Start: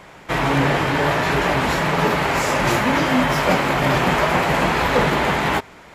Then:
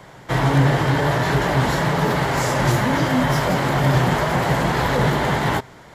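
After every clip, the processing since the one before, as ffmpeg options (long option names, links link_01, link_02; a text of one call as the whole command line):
ffmpeg -i in.wav -filter_complex "[0:a]equalizer=frequency=125:width_type=o:width=0.33:gain=11,equalizer=frequency=1250:width_type=o:width=0.33:gain=-3,equalizer=frequency=2500:width_type=o:width=0.33:gain=-9,acrossover=split=200|6900[link_01][link_02][link_03];[link_02]alimiter=limit=-12.5dB:level=0:latency=1:release=26[link_04];[link_01][link_04][link_03]amix=inputs=3:normalize=0" out.wav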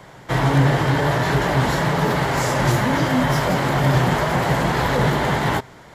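ffmpeg -i in.wav -af anull out.wav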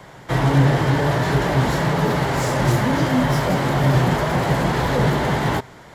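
ffmpeg -i in.wav -filter_complex "[0:a]acrossover=split=630[link_01][link_02];[link_02]asoftclip=type=tanh:threshold=-22.5dB[link_03];[link_01][link_03]amix=inputs=2:normalize=0,volume=1dB" -ar 48000 -c:a aac -b:a 192k out.aac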